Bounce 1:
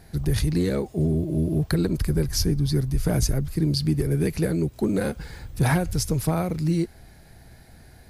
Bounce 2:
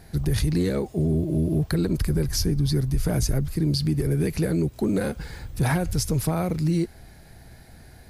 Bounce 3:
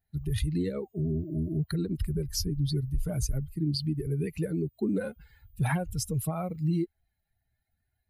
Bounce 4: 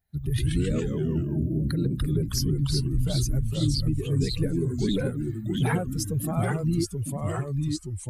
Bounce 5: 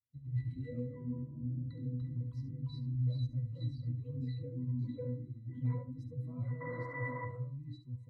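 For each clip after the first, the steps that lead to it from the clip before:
brickwall limiter −16.5 dBFS, peak gain reduction 4 dB; level +1.5 dB
spectral dynamics exaggerated over time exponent 2; level −2 dB
delay with pitch and tempo change per echo 83 ms, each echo −2 semitones, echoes 3; level +2 dB
sound drawn into the spectrogram noise, 0:06.60–0:07.26, 260–2,100 Hz −23 dBFS; resonances in every octave B, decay 0.3 s; single-tap delay 71 ms −11 dB; level −3 dB

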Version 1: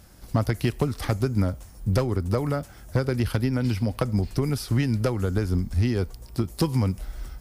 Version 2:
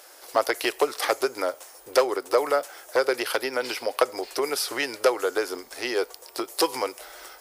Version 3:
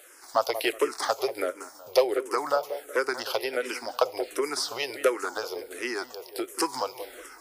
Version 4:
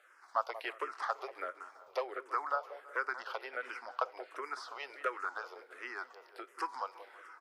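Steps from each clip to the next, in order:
inverse Chebyshev high-pass filter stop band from 210 Hz, stop band 40 dB; level +8 dB
on a send: feedback echo with a low-pass in the loop 186 ms, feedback 40%, low-pass 1,900 Hz, level −11 dB; on the sum: frequency shifter mixed with the dry sound −1.4 Hz
resonant band-pass 1,300 Hz, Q 1.9; repeating echo 331 ms, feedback 59%, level −23 dB; level −3.5 dB

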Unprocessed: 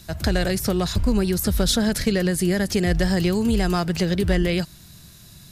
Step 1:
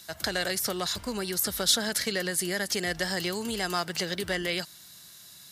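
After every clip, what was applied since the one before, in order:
high-pass filter 1,100 Hz 6 dB per octave
notch filter 2,500 Hz, Q 11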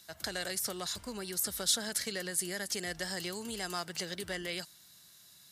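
dynamic equaliser 8,600 Hz, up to +6 dB, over −44 dBFS, Q 1
level −8.5 dB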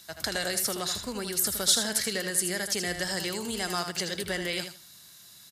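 repeating echo 79 ms, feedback 20%, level −8 dB
level +6 dB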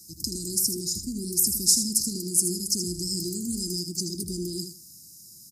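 sound drawn into the spectrogram noise, 0:03.45–0:04.15, 730–1,800 Hz −18 dBFS
Chebyshev band-stop filter 350–5,000 Hz, order 5
level +5.5 dB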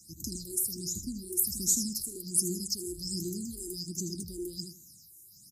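all-pass phaser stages 8, 1.3 Hz, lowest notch 180–1,600 Hz
level −3.5 dB

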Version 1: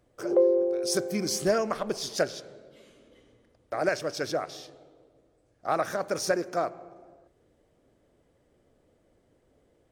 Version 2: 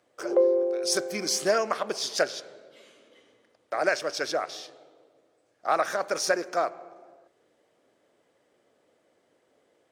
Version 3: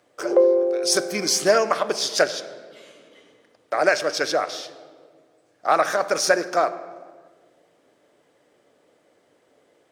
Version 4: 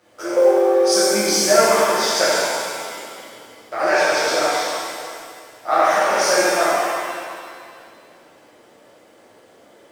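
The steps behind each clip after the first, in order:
meter weighting curve A; level +3.5 dB
rectangular room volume 1,800 cubic metres, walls mixed, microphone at 0.38 metres; level +6 dB
mu-law and A-law mismatch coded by mu; reverb with rising layers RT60 1.9 s, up +7 semitones, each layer −8 dB, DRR −10 dB; level −7 dB

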